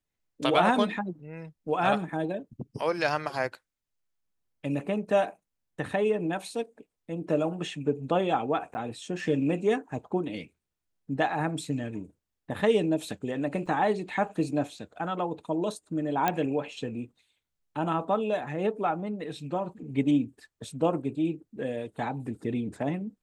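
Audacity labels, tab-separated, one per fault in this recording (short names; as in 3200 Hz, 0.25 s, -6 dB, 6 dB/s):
8.740000	8.750000	gap 10 ms
13.660000	13.660000	gap 4.2 ms
16.280000	16.280000	pop -11 dBFS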